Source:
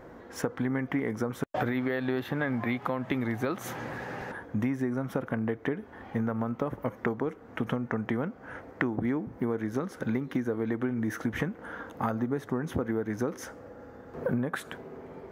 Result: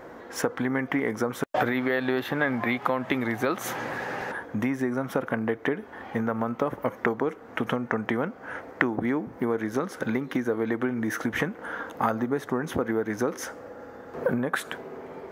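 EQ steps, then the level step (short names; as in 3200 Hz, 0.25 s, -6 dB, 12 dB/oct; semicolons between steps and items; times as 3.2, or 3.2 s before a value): low shelf 210 Hz -12 dB; +7.0 dB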